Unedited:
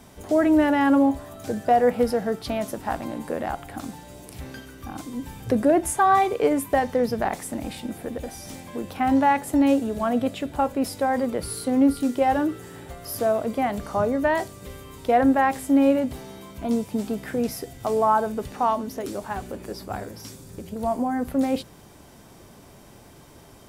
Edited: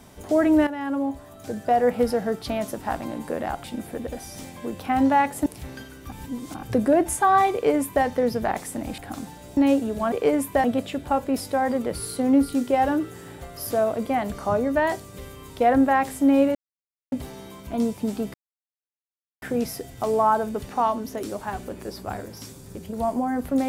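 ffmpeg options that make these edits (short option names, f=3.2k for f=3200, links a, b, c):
-filter_complex "[0:a]asplit=12[a][b][c][d][e][f][g][h][i][j][k][l];[a]atrim=end=0.67,asetpts=PTS-STARTPTS,afade=t=out:st=0.666:d=0.004:c=hsin:silence=0.237137[m];[b]atrim=start=0.67:end=3.642,asetpts=PTS-STARTPTS,afade=t=in:d=1.4:silence=0.237137[n];[c]atrim=start=7.748:end=9.572[o];[d]atrim=start=4.228:end=4.892[p];[e]atrim=start=4.888:end=5.402,asetpts=PTS-STARTPTS,areverse[q];[f]atrim=start=5.398:end=7.752[r];[g]atrim=start=3.638:end=4.232[s];[h]atrim=start=9.568:end=10.122[t];[i]atrim=start=6.298:end=6.822[u];[j]atrim=start=10.118:end=16.03,asetpts=PTS-STARTPTS,afade=t=out:st=5.908:d=0.004:c=hsin,apad=pad_dur=0.57[v];[k]atrim=start=16.03:end=17.25,asetpts=PTS-STARTPTS,afade=t=in:d=0.004:c=hsin,afade=t=out:st=1.216:d=0.004:c=hsin,apad=pad_dur=1.08[w];[l]atrim=start=17.25,asetpts=PTS-STARTPTS,afade=t=in:d=0.004:c=hsin[x];[m][n]concat=n=2:v=0:a=1[y];[y][o]acrossfade=d=0.004:c1=hsin:c2=hsin[z];[z][p]acrossfade=d=0.004:c1=hsin:c2=hsin[aa];[aa][q]acrossfade=d=0.004:c1=hsin:c2=hsin[ab];[ab][r]acrossfade=d=0.004:c1=hsin:c2=hsin[ac];[ac][s]acrossfade=d=0.004:c1=hsin:c2=hsin[ad];[ad][t]acrossfade=d=0.004:c1=hsin:c2=hsin[ae];[ae][u]acrossfade=d=0.004:c1=hsin:c2=hsin[af];[v][w][x]concat=n=3:v=0:a=1[ag];[af][ag]acrossfade=d=0.004:c1=hsin:c2=hsin"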